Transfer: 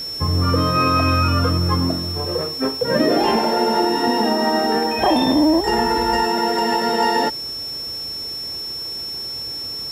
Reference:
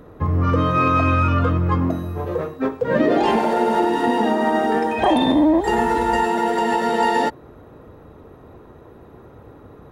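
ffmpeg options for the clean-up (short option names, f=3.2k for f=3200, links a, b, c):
-af "bandreject=f=5.4k:w=30,afwtdn=0.0079"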